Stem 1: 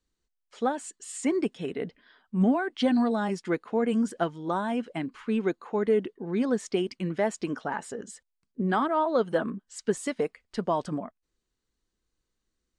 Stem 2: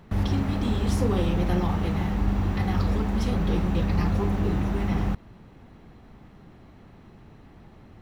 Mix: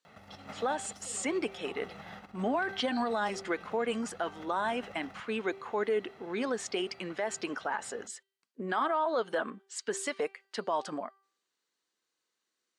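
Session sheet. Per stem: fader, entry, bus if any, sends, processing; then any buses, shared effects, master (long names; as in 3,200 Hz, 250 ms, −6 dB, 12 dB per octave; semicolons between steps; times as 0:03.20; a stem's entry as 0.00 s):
+2.5 dB, 0.00 s, no send, low-shelf EQ 140 Hz −12 dB; hum removal 390.5 Hz, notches 12
−8.0 dB, 0.05 s, no send, comb filter 1.5 ms, depth 56%; compressor whose output falls as the input rises −30 dBFS, ratio −1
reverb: not used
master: meter weighting curve A; brickwall limiter −21.5 dBFS, peak gain reduction 9.5 dB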